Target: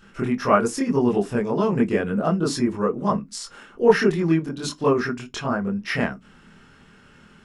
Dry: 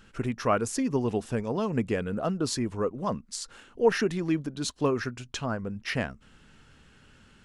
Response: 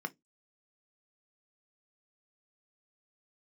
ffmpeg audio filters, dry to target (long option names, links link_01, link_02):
-filter_complex "[0:a]asplit=2[link_01][link_02];[1:a]atrim=start_sample=2205,adelay=24[link_03];[link_02][link_03]afir=irnorm=-1:irlink=0,volume=3.5dB[link_04];[link_01][link_04]amix=inputs=2:normalize=0"